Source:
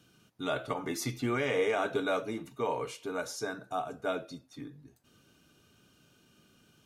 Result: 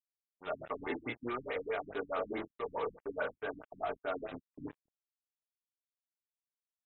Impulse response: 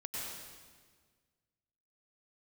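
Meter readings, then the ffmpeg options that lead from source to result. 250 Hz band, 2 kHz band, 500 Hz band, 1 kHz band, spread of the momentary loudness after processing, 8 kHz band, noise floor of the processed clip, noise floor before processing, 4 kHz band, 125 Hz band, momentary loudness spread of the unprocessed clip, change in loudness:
-7.5 dB, -5.5 dB, -5.5 dB, -4.5 dB, 9 LU, under -35 dB, under -85 dBFS, -66 dBFS, -11.0 dB, -12.5 dB, 14 LU, -6.5 dB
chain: -filter_complex "[0:a]acrossover=split=360 3200:gain=0.1 1 0.0891[a][b][c];[a][b][c]amix=inputs=3:normalize=0,bandreject=f=108.7:t=h:w=4,bandreject=f=217.4:t=h:w=4,bandreject=f=326.1:t=h:w=4,bandreject=f=434.8:t=h:w=4,bandreject=f=543.5:t=h:w=4,bandreject=f=652.2:t=h:w=4,bandreject=f=760.9:t=h:w=4,bandreject=f=869.6:t=h:w=4,bandreject=f=978.3:t=h:w=4,areverse,acompressor=threshold=-43dB:ratio=8,areverse,acrusher=bits=7:mix=0:aa=0.5,flanger=delay=20:depth=7.8:speed=0.55,afftfilt=real='re*lt(b*sr/1024,270*pow(4100/270,0.5+0.5*sin(2*PI*4.7*pts/sr)))':imag='im*lt(b*sr/1024,270*pow(4100/270,0.5+0.5*sin(2*PI*4.7*pts/sr)))':win_size=1024:overlap=0.75,volume=13dB"

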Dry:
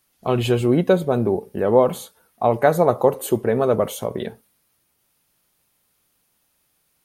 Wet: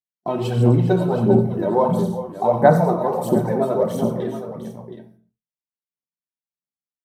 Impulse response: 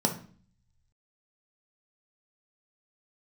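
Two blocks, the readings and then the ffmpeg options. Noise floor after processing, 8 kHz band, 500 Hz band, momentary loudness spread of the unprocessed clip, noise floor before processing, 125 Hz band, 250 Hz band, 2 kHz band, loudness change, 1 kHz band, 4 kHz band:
under -85 dBFS, -7.0 dB, -0.5 dB, 10 LU, -68 dBFS, +5.5 dB, +3.0 dB, -2.0 dB, +0.5 dB, +2.0 dB, n/a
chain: -filter_complex "[0:a]agate=range=-39dB:threshold=-43dB:ratio=16:detection=peak,acrossover=split=630|1900[a][b][c];[a]alimiter=limit=-17.5dB:level=0:latency=1:release=32[d];[d][b][c]amix=inputs=3:normalize=0,aecho=1:1:91|114|398|722:0.282|0.282|0.237|0.299,aphaser=in_gain=1:out_gain=1:delay=3.2:decay=0.65:speed=1.5:type=sinusoidal[e];[1:a]atrim=start_sample=2205,afade=t=out:st=0.36:d=0.01,atrim=end_sample=16317[f];[e][f]afir=irnorm=-1:irlink=0,volume=-15dB"

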